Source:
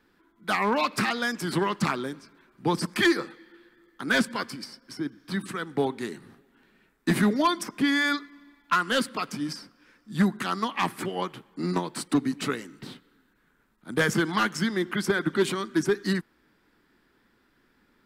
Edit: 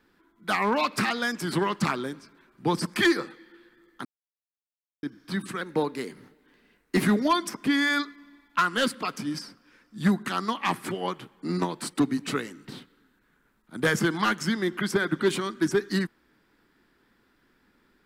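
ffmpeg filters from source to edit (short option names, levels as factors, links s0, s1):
-filter_complex "[0:a]asplit=5[s0][s1][s2][s3][s4];[s0]atrim=end=4.05,asetpts=PTS-STARTPTS,afade=t=out:st=4.046:d=0.004:c=hsin[s5];[s1]atrim=start=4.05:end=5.03,asetpts=PTS-STARTPTS,volume=0[s6];[s2]atrim=start=5.03:end=5.614,asetpts=PTS-STARTPTS,afade=t=in:d=0.004:c=hsin[s7];[s3]atrim=start=5.61:end=7.17,asetpts=PTS-STARTPTS,asetrate=48510,aresample=44100[s8];[s4]atrim=start=7.166[s9];[s5][s6][s7]concat=n=3:v=0:a=1[s10];[s10][s8]acrossfade=d=0.004:c1=hsin:c2=hsin[s11];[s11][s9]acrossfade=d=0.004:c1=hsin:c2=hsin"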